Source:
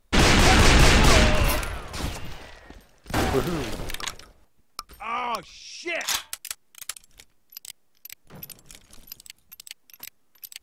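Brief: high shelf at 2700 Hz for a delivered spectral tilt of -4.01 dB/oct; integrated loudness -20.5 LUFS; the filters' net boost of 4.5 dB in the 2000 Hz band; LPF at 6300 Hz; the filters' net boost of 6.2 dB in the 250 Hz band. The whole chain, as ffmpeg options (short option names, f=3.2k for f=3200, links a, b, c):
-af "lowpass=6.3k,equalizer=f=250:t=o:g=8,equalizer=f=2k:t=o:g=8.5,highshelf=f=2.7k:g=-7,volume=-1dB"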